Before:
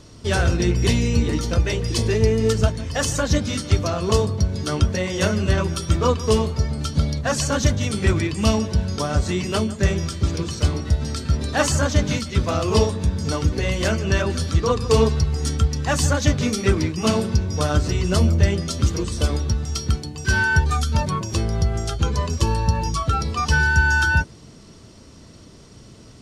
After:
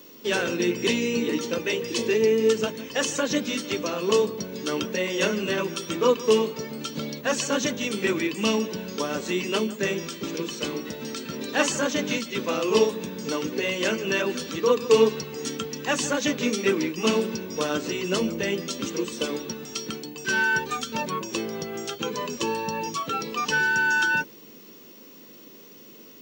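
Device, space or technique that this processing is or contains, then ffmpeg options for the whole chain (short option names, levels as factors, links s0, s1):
old television with a line whistle: -af "highpass=f=220:w=0.5412,highpass=f=220:w=1.3066,equalizer=f=480:t=q:w=4:g=4,equalizer=f=690:t=q:w=4:g=-9,equalizer=f=1300:t=q:w=4:g=-4,equalizer=f=2700:t=q:w=4:g=5,equalizer=f=4800:t=q:w=4:g=-6,lowpass=f=7600:w=0.5412,lowpass=f=7600:w=1.3066,aeval=exprs='val(0)+0.00447*sin(2*PI*15625*n/s)':c=same,volume=0.891"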